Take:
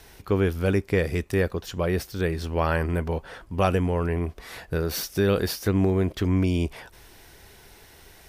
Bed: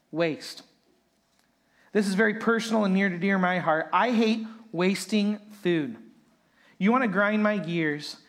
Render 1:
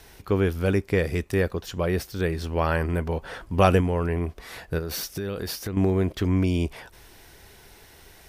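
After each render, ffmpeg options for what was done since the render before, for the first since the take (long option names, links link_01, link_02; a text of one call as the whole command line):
ffmpeg -i in.wav -filter_complex "[0:a]asettb=1/sr,asplit=3[link_01][link_02][link_03];[link_01]atrim=end=4.784[link_04];[link_02]atrim=start=4.78:end=5.77,asetpts=PTS-STARTPTS,afade=type=in:duration=0.004:curve=qsin,afade=type=out:start_time=0.986:duration=0.004:curve=qsin,acompressor=threshold=-26dB:ratio=10:attack=3.2:release=140:knee=1:detection=peak[link_05];[link_03]atrim=start=5.766[link_06];[link_04][link_05]acrossfade=duration=0.004:curve1=hsin:curve2=qsin[link_07];[link_07][link_06]acrossfade=duration=0.004:curve1=qsin:curve2=hsin,asplit=3[link_08][link_09][link_10];[link_08]atrim=end=3.222[link_11];[link_09]atrim=start=3.218:end=3.812,asetpts=PTS-STARTPTS,volume=4dB[link_12];[link_10]atrim=start=3.808[link_13];[link_11][link_12]acrossfade=duration=0.004:curve1=hsin:curve2=hsin[link_14];[link_14][link_13]acrossfade=duration=0.004:curve1=hsin:curve2=hsin" out.wav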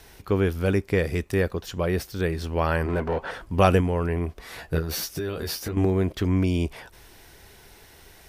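ffmpeg -i in.wav -filter_complex "[0:a]asettb=1/sr,asplit=3[link_01][link_02][link_03];[link_01]atrim=end=2.864[link_04];[link_02]atrim=start=2.86:end=3.31,asetpts=PTS-STARTPTS,afade=type=in:duration=0.004:curve=qsin,afade=type=out:start_time=0.446:duration=0.004:curve=qsin,asplit=2[link_05][link_06];[link_06]highpass=frequency=720:poles=1,volume=19dB,asoftclip=type=tanh:threshold=-16dB[link_07];[link_05][link_07]amix=inputs=2:normalize=0,lowpass=frequency=1200:poles=1,volume=-6dB[link_08];[link_03]atrim=start=3.306[link_09];[link_04][link_08]acrossfade=duration=0.004:curve1=hsin:curve2=qsin[link_10];[link_10][link_09]acrossfade=duration=0.004:curve1=qsin:curve2=hsin,asettb=1/sr,asplit=3[link_11][link_12][link_13];[link_11]atrim=end=4.574[link_14];[link_12]atrim=start=4.57:end=5.85,asetpts=PTS-STARTPTS,afade=type=in:duration=0.004:curve=qsin,afade=type=out:start_time=1.276:duration=0.004:curve=qsin,asplit=2[link_15][link_16];[link_16]adelay=13,volume=-4dB[link_17];[link_15][link_17]amix=inputs=2:normalize=0,atrim=end_sample=56448[link_18];[link_13]atrim=start=5.846[link_19];[link_14][link_18]acrossfade=duration=0.004:curve1=hsin:curve2=qsin[link_20];[link_20][link_19]acrossfade=duration=0.004:curve1=qsin:curve2=hsin" out.wav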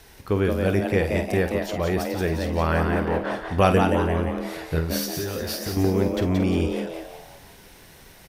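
ffmpeg -i in.wav -filter_complex "[0:a]asplit=2[link_01][link_02];[link_02]adelay=49,volume=-10dB[link_03];[link_01][link_03]amix=inputs=2:normalize=0,asplit=6[link_04][link_05][link_06][link_07][link_08][link_09];[link_05]adelay=176,afreqshift=120,volume=-5dB[link_10];[link_06]adelay=352,afreqshift=240,volume=-12.3dB[link_11];[link_07]adelay=528,afreqshift=360,volume=-19.7dB[link_12];[link_08]adelay=704,afreqshift=480,volume=-27dB[link_13];[link_09]adelay=880,afreqshift=600,volume=-34.3dB[link_14];[link_04][link_10][link_11][link_12][link_13][link_14]amix=inputs=6:normalize=0" out.wav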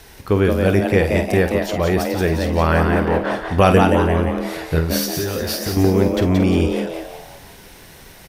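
ffmpeg -i in.wav -af "volume=6dB,alimiter=limit=-1dB:level=0:latency=1" out.wav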